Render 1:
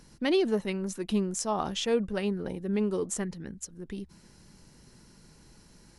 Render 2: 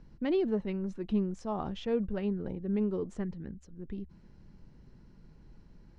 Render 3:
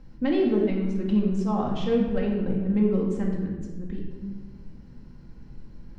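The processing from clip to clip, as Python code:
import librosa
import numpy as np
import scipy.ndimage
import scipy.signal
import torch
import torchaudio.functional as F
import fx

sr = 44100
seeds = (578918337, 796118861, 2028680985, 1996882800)

y1 = scipy.signal.sosfilt(scipy.signal.butter(2, 4000.0, 'lowpass', fs=sr, output='sos'), x)
y1 = fx.tilt_eq(y1, sr, slope=-2.5)
y1 = y1 * 10.0 ** (-7.0 / 20.0)
y2 = fx.room_shoebox(y1, sr, seeds[0], volume_m3=1100.0, walls='mixed', distance_m=2.1)
y2 = y2 * 10.0 ** (3.0 / 20.0)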